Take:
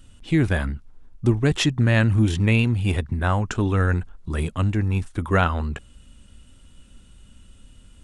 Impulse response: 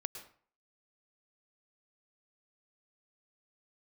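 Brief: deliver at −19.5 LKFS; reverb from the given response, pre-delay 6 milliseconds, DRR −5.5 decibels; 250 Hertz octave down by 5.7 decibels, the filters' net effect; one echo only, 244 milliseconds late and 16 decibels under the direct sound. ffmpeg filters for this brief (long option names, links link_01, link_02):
-filter_complex "[0:a]equalizer=frequency=250:width_type=o:gain=-8,aecho=1:1:244:0.158,asplit=2[link_01][link_02];[1:a]atrim=start_sample=2205,adelay=6[link_03];[link_02][link_03]afir=irnorm=-1:irlink=0,volume=6.5dB[link_04];[link_01][link_04]amix=inputs=2:normalize=0,volume=-1dB"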